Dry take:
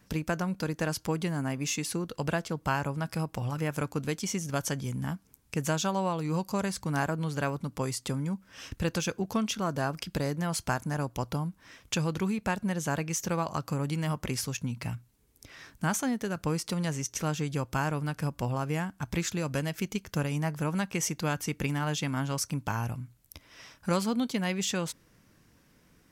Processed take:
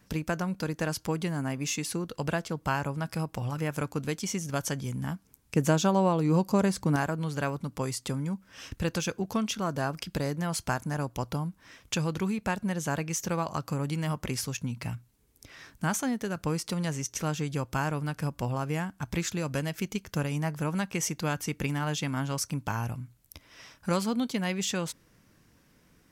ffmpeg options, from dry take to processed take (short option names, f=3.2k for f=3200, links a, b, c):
-filter_complex "[0:a]asettb=1/sr,asplit=3[a][b][c];[a]atrim=end=5.564[d];[b]atrim=start=5.56:end=6.96,asetpts=PTS-STARTPTS,afade=t=in:d=0.004:c=qsin,afade=t=out:st=1.396:d=0.004:c=qsin,equalizer=f=300:w=0.43:g=7.5[e];[c]atrim=start=6.956[f];[d][e]acrossfade=d=0.004:c1=hsin:c2=qsin[g];[g][f]acrossfade=d=0.004:c1=qsin:c2=hsin"